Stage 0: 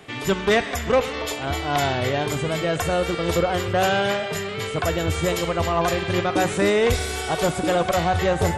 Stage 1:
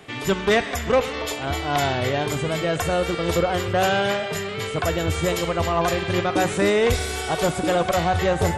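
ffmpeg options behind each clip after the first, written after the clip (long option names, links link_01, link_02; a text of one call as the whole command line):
ffmpeg -i in.wav -af anull out.wav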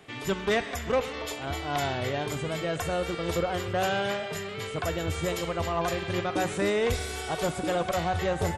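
ffmpeg -i in.wav -filter_complex "[0:a]asplit=2[link_01][link_02];[link_02]adelay=139.9,volume=-28dB,highshelf=frequency=4000:gain=-3.15[link_03];[link_01][link_03]amix=inputs=2:normalize=0,volume=-7dB" out.wav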